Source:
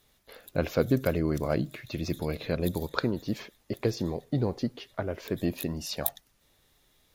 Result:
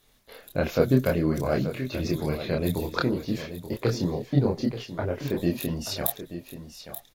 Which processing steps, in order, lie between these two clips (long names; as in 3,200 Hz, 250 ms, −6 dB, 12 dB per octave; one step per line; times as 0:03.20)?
multi-voice chorus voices 6, 0.95 Hz, delay 27 ms, depth 4.6 ms
single-tap delay 881 ms −11.5 dB
level +6 dB